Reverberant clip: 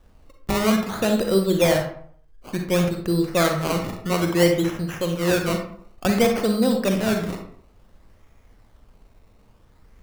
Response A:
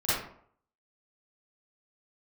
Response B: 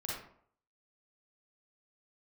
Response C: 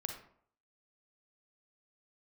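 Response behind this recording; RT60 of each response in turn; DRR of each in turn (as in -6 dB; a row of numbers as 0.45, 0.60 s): C; 0.60, 0.60, 0.60 s; -14.0, -5.5, 3.5 dB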